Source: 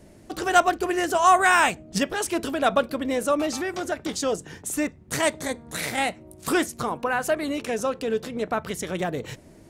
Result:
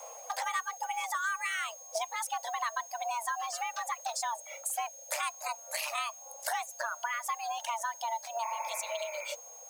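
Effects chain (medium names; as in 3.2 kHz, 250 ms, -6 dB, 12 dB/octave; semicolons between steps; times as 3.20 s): reverb removal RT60 1.8 s; spectral replace 8.47–9.26 s, 210–2200 Hz both; compression 6:1, threshold -35 dBFS, peak gain reduction 21 dB; added noise blue -63 dBFS; frequency shift +460 Hz; whistle 6.5 kHz -50 dBFS; trim +2.5 dB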